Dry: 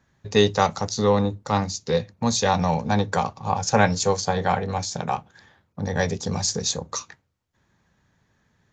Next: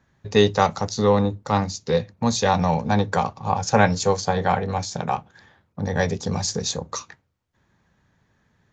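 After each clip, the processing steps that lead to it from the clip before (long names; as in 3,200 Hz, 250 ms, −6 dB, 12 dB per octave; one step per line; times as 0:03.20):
high-shelf EQ 5,000 Hz −6 dB
level +1.5 dB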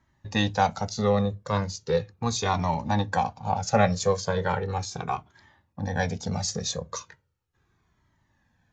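flanger whose copies keep moving one way falling 0.37 Hz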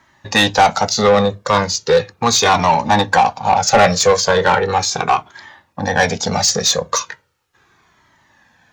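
mid-hump overdrive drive 21 dB, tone 7,400 Hz, clips at −6 dBFS
level +4.5 dB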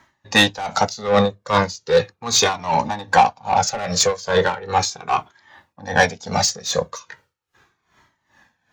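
tremolo with a sine in dB 2.5 Hz, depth 18 dB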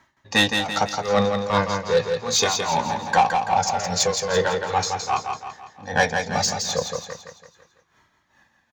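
repeating echo 167 ms, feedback 46%, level −5.5 dB
level −4 dB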